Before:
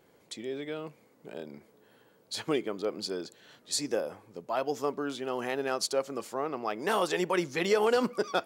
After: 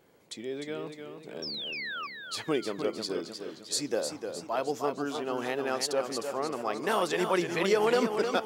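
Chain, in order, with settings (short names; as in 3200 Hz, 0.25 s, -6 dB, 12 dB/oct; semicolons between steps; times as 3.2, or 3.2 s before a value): painted sound fall, 1.42–2.07, 1100–5700 Hz -37 dBFS; warbling echo 0.306 s, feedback 47%, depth 84 cents, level -7 dB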